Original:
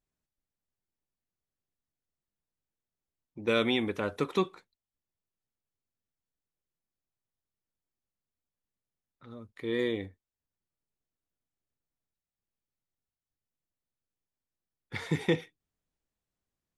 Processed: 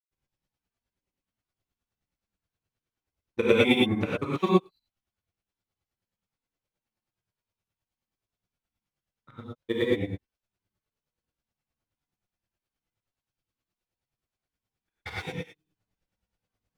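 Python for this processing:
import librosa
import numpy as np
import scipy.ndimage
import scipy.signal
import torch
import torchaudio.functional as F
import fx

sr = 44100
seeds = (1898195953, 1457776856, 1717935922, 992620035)

y = scipy.ndimage.median_filter(x, 5, mode='constant')
y = fx.granulator(y, sr, seeds[0], grain_ms=54.0, per_s=9.5, spray_ms=100.0, spread_st=0)
y = fx.rev_gated(y, sr, seeds[1], gate_ms=140, shape='rising', drr_db=-5.5)
y = y * 10.0 ** (5.5 / 20.0)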